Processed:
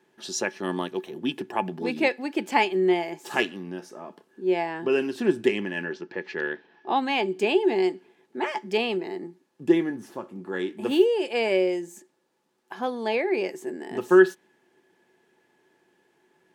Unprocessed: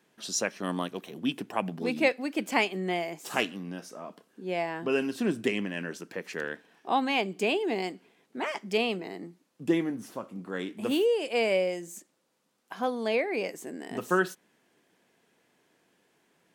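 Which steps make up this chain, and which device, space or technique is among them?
inside a helmet (high shelf 6000 Hz -5 dB; small resonant body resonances 370/860/1700 Hz, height 14 dB, ringing for 0.1 s); 5.85–6.96 LPF 5000 Hz 24 dB/oct; dynamic EQ 3600 Hz, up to +3 dB, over -45 dBFS, Q 0.83

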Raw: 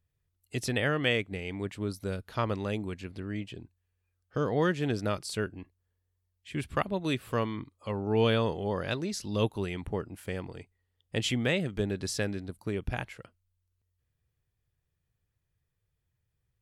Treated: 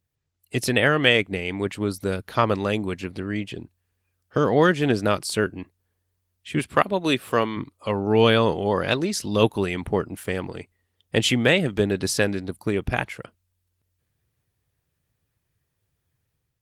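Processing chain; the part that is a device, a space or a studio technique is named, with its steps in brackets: 5–5.45 de-esser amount 30%; 6.59–7.57 HPF 190 Hz 6 dB/oct; harmonic-percussive split harmonic -3 dB; video call (HPF 110 Hz 6 dB/oct; AGC gain up to 6.5 dB; gain +5 dB; Opus 24 kbps 48000 Hz)

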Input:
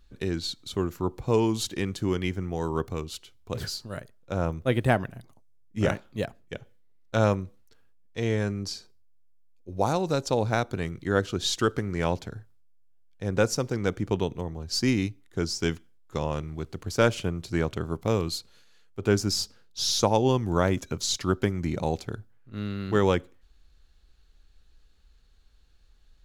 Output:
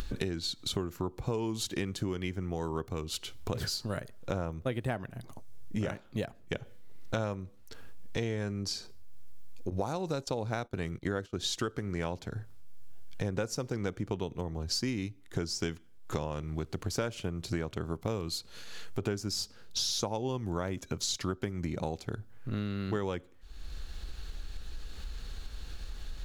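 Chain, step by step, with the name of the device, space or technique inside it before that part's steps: upward and downward compression (upward compressor, threshold -34 dBFS; compressor 8:1, threshold -38 dBFS, peak gain reduction 21 dB); 9.7–11.45 gate -45 dBFS, range -18 dB; gain +7.5 dB

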